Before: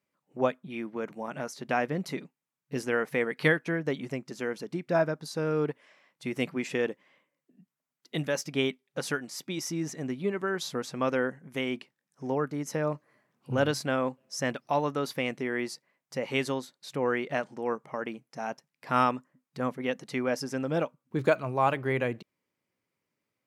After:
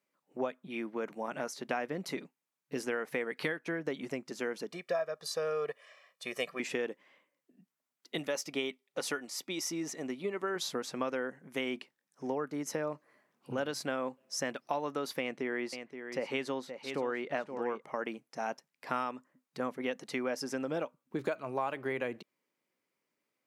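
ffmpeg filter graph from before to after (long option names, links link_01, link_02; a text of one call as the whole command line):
ffmpeg -i in.wav -filter_complex "[0:a]asettb=1/sr,asplit=3[link_01][link_02][link_03];[link_01]atrim=end=4.724[link_04];[link_02]atrim=start=4.72:end=6.6,asetpts=PTS-STARTPTS,afade=type=in:duration=0.004:curve=qsin,afade=type=out:start_time=1.876:duration=0.004:curve=qsin,highpass=frequency=440:poles=1,aecho=1:1:1.7:0.86,atrim=end_sample=82908[link_05];[link_03]atrim=start=6.596[link_06];[link_04][link_05]acrossfade=duration=0.004:curve1=hsin:curve2=qsin[link_07];[link_07][link_06]acrossfade=duration=0.004:curve1=qsin:curve2=hsin,asettb=1/sr,asplit=3[link_08][link_09][link_10];[link_08]atrim=end=8.184[link_11];[link_09]atrim=start=8.18:end=10.56,asetpts=PTS-STARTPTS,afade=type=in:duration=0.004:curve=qsin,afade=type=out:start_time=2.376:duration=0.004:curve=qsin,lowshelf=frequency=150:gain=-10.5,bandreject=frequency=1600:width=9.6[link_12];[link_10]atrim=start=10.556[link_13];[link_11][link_12]acrossfade=duration=0.004:curve1=hsin:curve2=qsin[link_14];[link_14][link_13]acrossfade=duration=0.004:curve1=qsin:curve2=hsin,asettb=1/sr,asplit=3[link_15][link_16][link_17];[link_15]atrim=end=15.204[link_18];[link_16]atrim=start=15.2:end=17.82,asetpts=PTS-STARTPTS,afade=type=in:duration=0.004:curve=qsin,afade=type=out:start_time=2.616:duration=0.004:curve=qsin,lowpass=frequency=4000:poles=1,aecho=1:1:524:0.266,atrim=end_sample=115542[link_19];[link_17]atrim=start=17.816[link_20];[link_18][link_19]acrossfade=duration=0.004:curve1=hsin:curve2=qsin[link_21];[link_21][link_20]acrossfade=duration=0.004:curve1=qsin:curve2=hsin,acompressor=threshold=-29dB:ratio=12,highpass=230" out.wav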